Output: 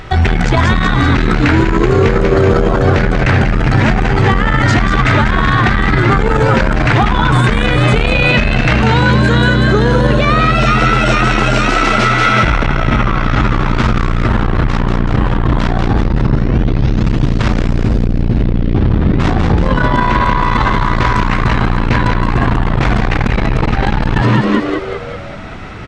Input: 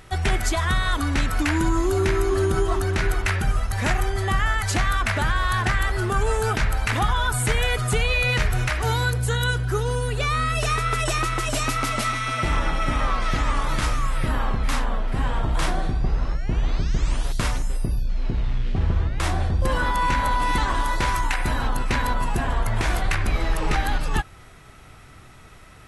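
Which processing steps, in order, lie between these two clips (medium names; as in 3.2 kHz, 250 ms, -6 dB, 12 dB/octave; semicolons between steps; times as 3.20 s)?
Gaussian low-pass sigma 1.7 samples; on a send: frequency-shifting echo 190 ms, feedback 56%, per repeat +89 Hz, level -4.5 dB; on the sum: loudness maximiser +17 dB; transformer saturation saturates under 110 Hz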